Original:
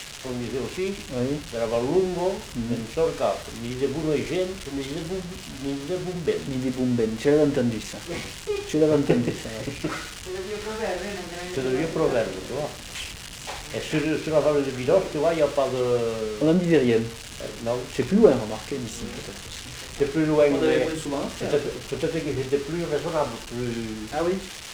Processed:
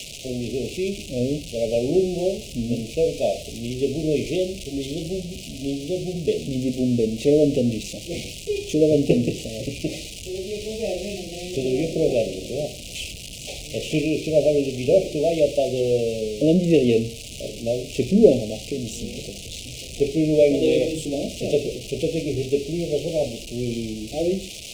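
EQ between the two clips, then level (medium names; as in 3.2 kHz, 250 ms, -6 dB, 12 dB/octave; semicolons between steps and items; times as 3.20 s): elliptic band-stop 640–2500 Hz, stop band 40 dB; +3.0 dB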